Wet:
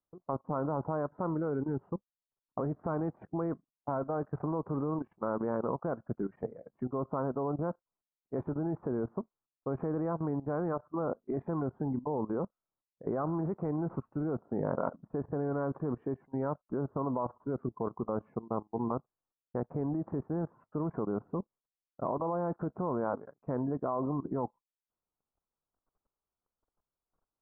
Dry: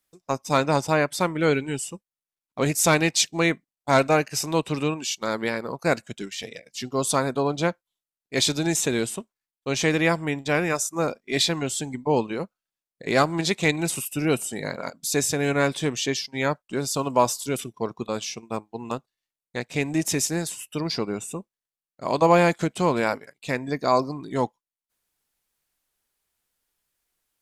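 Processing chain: steep low-pass 1.3 kHz 48 dB/octave; in parallel at -0.5 dB: compression 6:1, threshold -30 dBFS, peak gain reduction 16.5 dB; on the sum: peak limiter -14 dBFS, peak gain reduction 9 dB; level held to a coarse grid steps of 16 dB

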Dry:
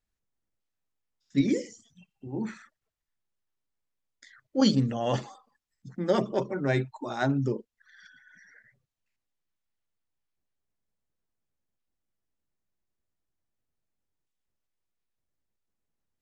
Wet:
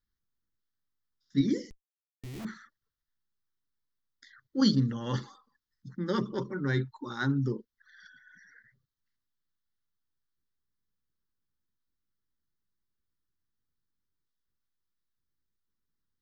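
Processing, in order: static phaser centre 2.5 kHz, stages 6; 1.70–2.45 s: Schmitt trigger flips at -43.5 dBFS; 1.70–2.40 s: time-frequency box 480–1800 Hz -11 dB

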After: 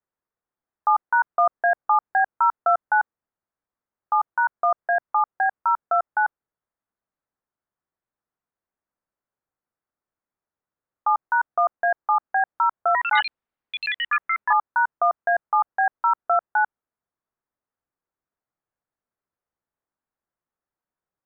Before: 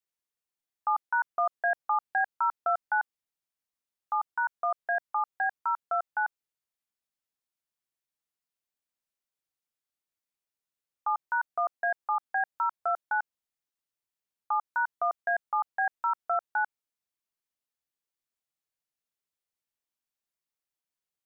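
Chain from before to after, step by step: low-pass 1.6 kHz 24 dB/octave; 12.76–15.09 s: ever faster or slower copies 120 ms, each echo +6 st, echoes 3; trim +8.5 dB

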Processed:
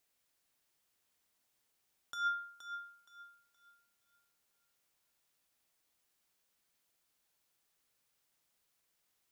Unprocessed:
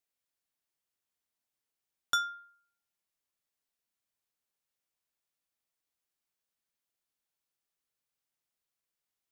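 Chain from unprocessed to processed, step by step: compressor with a negative ratio -39 dBFS, ratio -1; thinning echo 471 ms, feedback 30%, level -9.5 dB; trim +2.5 dB

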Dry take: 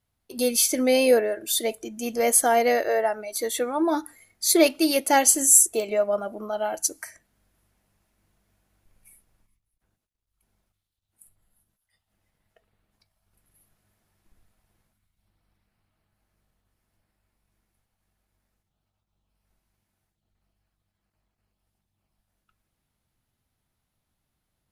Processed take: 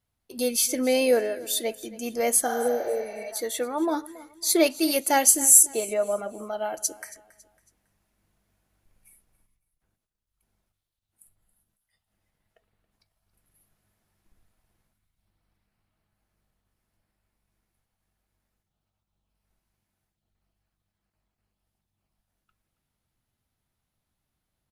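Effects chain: feedback delay 276 ms, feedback 35%, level -19 dB; 2.49–3.21 s: spectral replace 620–6800 Hz both; 4.83–5.63 s: treble shelf 11 kHz +9 dB; trim -2.5 dB

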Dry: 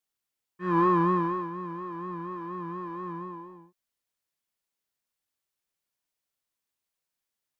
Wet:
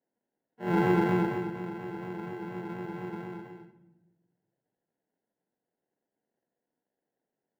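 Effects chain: harmony voices +4 st -9 dB; sample-rate reducer 1.2 kHz, jitter 0%; three-band isolator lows -24 dB, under 160 Hz, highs -22 dB, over 2.3 kHz; on a send: reverberation RT60 1.1 s, pre-delay 4 ms, DRR 9 dB

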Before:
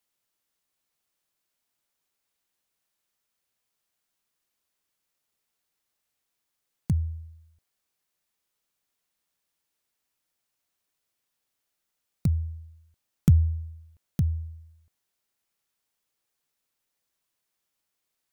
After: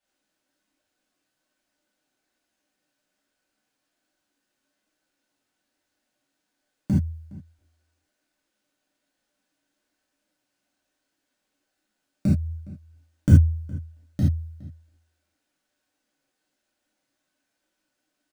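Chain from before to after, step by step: median filter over 3 samples; band-stop 640 Hz, Q 12; small resonant body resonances 290/590/1500 Hz, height 13 dB, ringing for 40 ms; flange 1.2 Hz, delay 1.1 ms, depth 7 ms, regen +41%; echo from a far wall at 71 m, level -20 dB; gated-style reverb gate 100 ms flat, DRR -8 dB; trim -1 dB

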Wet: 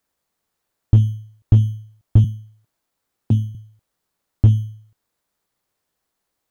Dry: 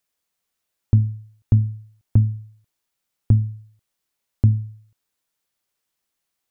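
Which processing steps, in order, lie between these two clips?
2.24–3.55 s: high-pass 120 Hz 24 dB/octave; in parallel at -5 dB: sample-and-hold 14×; on the sum: slew-rate limiter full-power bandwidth 62 Hz

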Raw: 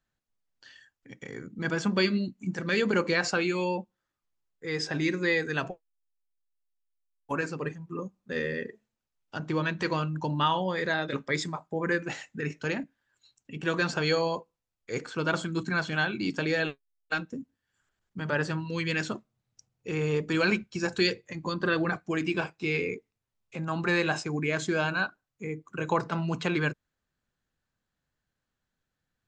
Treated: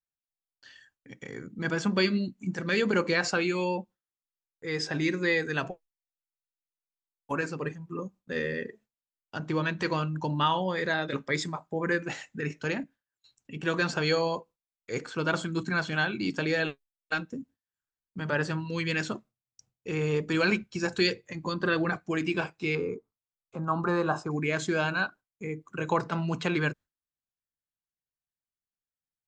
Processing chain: gate with hold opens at -52 dBFS; 22.75–24.31 s: resonant high shelf 1.6 kHz -9.5 dB, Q 3

